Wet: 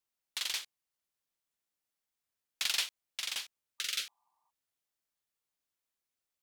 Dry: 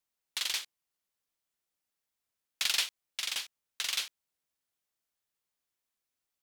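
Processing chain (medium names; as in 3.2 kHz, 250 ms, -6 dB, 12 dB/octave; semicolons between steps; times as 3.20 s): spectral replace 3.81–4.47 s, 600–1200 Hz before; trim -2.5 dB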